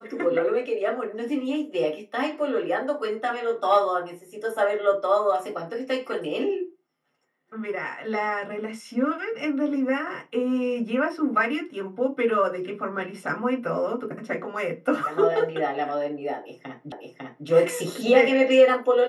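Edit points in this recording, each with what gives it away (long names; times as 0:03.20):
0:16.92: the same again, the last 0.55 s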